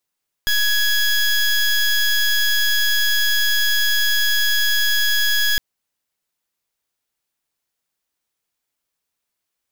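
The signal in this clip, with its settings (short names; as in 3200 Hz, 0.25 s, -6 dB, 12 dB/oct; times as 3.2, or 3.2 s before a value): pulse 1670 Hz, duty 19% -17 dBFS 5.11 s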